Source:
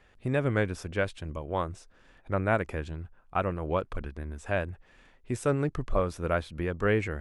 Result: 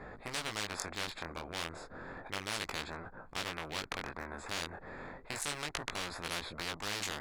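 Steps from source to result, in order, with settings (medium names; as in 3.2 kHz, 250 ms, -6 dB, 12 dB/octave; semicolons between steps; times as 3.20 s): local Wiener filter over 15 samples; chorus 0.32 Hz, delay 17 ms, depth 7.5 ms; spectrum-flattening compressor 10:1; trim +1 dB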